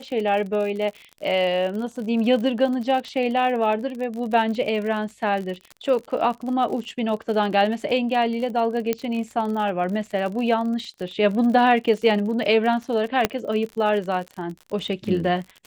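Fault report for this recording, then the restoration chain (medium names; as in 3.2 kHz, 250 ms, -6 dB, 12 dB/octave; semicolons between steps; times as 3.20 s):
crackle 53 per s -30 dBFS
8.93 s: pop -9 dBFS
13.25 s: pop -4 dBFS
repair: de-click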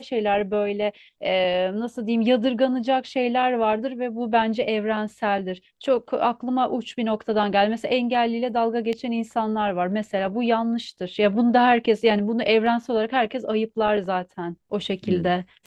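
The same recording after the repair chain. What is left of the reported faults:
8.93 s: pop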